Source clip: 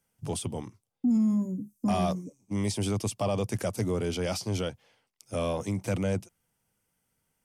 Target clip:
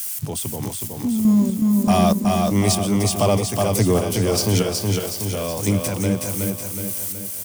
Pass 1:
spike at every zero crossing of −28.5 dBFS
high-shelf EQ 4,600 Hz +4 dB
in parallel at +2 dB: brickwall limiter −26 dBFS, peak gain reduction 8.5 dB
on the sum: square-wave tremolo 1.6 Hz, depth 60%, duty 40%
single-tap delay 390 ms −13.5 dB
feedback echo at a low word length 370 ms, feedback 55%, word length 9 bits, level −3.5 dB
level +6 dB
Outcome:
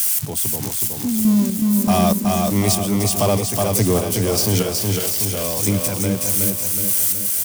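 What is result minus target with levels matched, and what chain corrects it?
spike at every zero crossing: distortion +10 dB
spike at every zero crossing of −39 dBFS
high-shelf EQ 4,600 Hz +4 dB
in parallel at +2 dB: brickwall limiter −26 dBFS, peak gain reduction 7 dB
on the sum: square-wave tremolo 1.6 Hz, depth 60%, duty 40%
single-tap delay 390 ms −13.5 dB
feedback echo at a low word length 370 ms, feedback 55%, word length 9 bits, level −3.5 dB
level +6 dB

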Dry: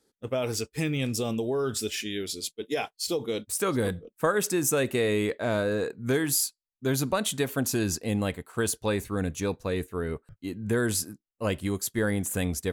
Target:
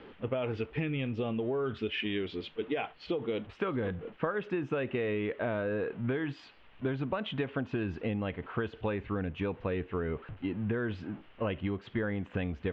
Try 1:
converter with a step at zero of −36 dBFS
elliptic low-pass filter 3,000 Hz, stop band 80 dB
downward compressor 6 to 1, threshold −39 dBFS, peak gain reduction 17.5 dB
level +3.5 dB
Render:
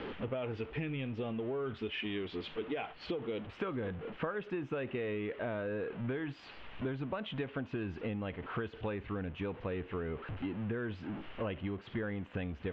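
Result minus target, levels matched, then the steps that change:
converter with a step at zero: distortion +9 dB; downward compressor: peak gain reduction +5.5 dB
change: converter with a step at zero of −45.5 dBFS
change: downward compressor 6 to 1, threshold −33 dBFS, peak gain reduction 12.5 dB

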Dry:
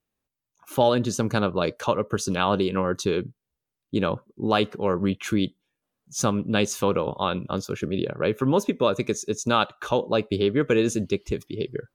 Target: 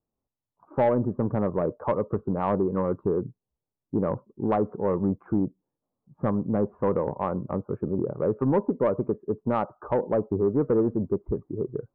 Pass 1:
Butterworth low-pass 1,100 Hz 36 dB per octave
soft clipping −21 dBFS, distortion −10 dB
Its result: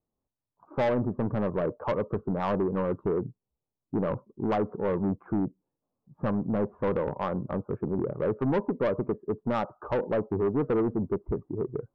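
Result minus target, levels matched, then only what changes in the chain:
soft clipping: distortion +8 dB
change: soft clipping −13.5 dBFS, distortion −18 dB

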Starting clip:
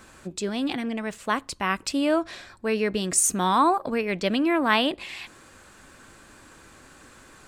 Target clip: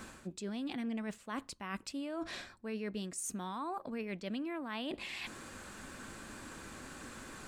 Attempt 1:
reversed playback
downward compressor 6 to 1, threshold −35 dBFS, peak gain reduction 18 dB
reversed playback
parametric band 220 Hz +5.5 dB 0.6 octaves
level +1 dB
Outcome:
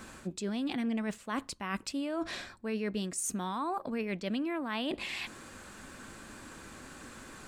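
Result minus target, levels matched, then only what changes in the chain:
downward compressor: peak gain reduction −5.5 dB
change: downward compressor 6 to 1, threshold −41.5 dBFS, peak gain reduction 23.5 dB

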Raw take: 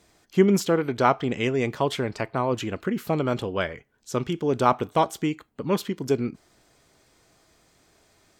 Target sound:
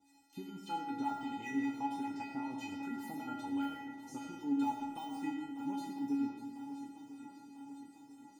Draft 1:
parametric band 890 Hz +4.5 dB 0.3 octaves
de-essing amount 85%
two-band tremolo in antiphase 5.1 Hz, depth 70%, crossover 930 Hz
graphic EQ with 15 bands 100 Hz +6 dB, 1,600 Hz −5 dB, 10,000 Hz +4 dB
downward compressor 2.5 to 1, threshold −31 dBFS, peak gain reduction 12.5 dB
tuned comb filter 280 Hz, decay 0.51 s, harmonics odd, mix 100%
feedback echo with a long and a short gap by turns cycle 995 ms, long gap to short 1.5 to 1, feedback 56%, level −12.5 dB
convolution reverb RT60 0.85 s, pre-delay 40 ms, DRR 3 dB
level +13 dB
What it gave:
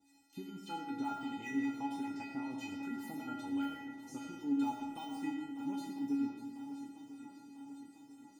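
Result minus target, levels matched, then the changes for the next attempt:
1,000 Hz band −3.0 dB
change: parametric band 890 Hz +11.5 dB 0.3 octaves

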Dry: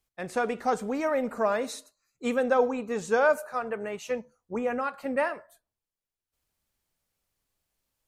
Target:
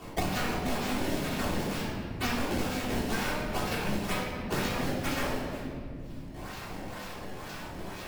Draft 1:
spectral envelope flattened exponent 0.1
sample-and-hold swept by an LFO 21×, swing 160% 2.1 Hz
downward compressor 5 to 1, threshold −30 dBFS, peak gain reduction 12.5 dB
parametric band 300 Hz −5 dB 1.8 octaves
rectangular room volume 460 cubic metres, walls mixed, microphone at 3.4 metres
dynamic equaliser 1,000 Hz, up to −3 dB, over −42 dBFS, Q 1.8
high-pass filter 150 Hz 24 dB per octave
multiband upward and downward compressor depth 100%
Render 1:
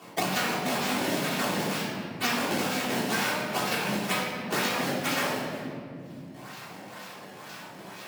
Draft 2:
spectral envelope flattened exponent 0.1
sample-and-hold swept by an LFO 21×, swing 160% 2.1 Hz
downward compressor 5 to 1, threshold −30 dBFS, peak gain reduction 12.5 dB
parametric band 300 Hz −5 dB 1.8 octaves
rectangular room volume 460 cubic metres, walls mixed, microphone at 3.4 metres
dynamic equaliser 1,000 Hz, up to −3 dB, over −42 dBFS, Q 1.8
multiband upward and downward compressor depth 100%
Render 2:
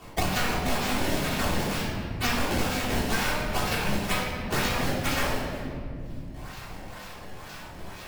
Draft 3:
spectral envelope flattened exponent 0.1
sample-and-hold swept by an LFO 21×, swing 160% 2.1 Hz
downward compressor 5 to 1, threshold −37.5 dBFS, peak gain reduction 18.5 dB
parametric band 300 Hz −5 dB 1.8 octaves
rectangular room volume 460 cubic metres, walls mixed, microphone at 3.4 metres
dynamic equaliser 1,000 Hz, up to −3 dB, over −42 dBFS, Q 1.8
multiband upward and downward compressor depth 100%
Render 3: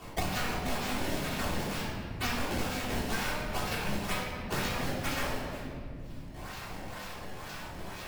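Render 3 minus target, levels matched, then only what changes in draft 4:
250 Hz band −2.5 dB
remove: parametric band 300 Hz −5 dB 1.8 octaves

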